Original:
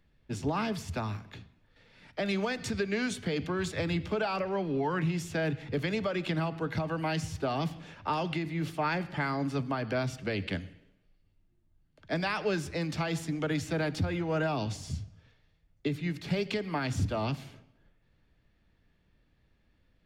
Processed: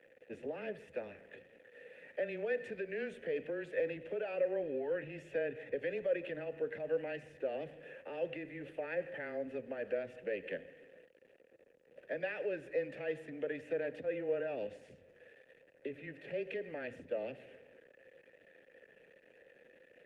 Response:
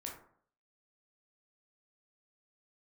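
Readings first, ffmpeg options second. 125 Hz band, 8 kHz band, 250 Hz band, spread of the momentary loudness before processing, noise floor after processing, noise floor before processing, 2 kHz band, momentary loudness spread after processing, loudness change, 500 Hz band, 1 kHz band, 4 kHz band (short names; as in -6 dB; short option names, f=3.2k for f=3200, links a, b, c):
-22.5 dB, under -25 dB, -14.5 dB, 7 LU, -66 dBFS, -69 dBFS, -8.0 dB, 14 LU, -7.5 dB, -2.0 dB, -17.5 dB, -18.5 dB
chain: -filter_complex "[0:a]aeval=exprs='val(0)+0.5*0.00531*sgn(val(0))':c=same,equalizer=f=4.8k:t=o:w=1.2:g=-12.5,alimiter=level_in=1dB:limit=-24dB:level=0:latency=1:release=105,volume=-1dB,asplit=3[a][b][c];[a]bandpass=f=530:t=q:w=8,volume=0dB[d];[b]bandpass=f=1.84k:t=q:w=8,volume=-6dB[e];[c]bandpass=f=2.48k:t=q:w=8,volume=-9dB[f];[d][e][f]amix=inputs=3:normalize=0,afreqshift=-13,highpass=140,asplit=2[g][h];[1:a]atrim=start_sample=2205[i];[h][i]afir=irnorm=-1:irlink=0,volume=-17.5dB[j];[g][j]amix=inputs=2:normalize=0,volume=7dB" -ar 48000 -c:a libopus -b:a 32k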